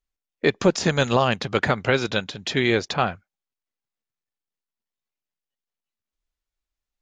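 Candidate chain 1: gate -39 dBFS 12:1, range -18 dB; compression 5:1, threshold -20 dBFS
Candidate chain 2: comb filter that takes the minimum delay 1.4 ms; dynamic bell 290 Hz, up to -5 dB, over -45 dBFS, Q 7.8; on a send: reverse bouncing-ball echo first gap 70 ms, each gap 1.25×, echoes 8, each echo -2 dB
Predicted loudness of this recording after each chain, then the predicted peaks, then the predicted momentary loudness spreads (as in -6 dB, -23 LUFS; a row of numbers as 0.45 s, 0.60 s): -26.5 LUFS, -19.5 LUFS; -8.5 dBFS, -2.5 dBFS; 4 LU, 15 LU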